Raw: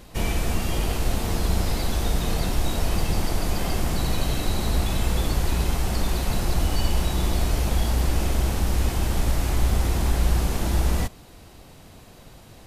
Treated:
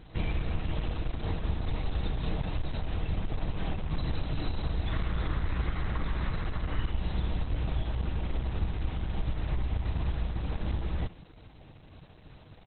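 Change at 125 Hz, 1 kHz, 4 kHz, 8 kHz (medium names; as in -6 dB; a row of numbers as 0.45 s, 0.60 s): -7.0 dB, -10.0 dB, -13.0 dB, under -40 dB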